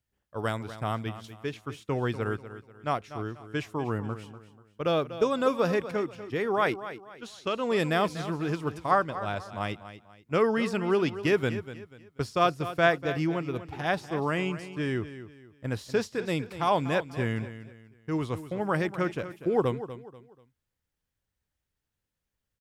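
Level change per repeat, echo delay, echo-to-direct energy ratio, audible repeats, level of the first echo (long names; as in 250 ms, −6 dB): −9.5 dB, 243 ms, −12.5 dB, 3, −13.0 dB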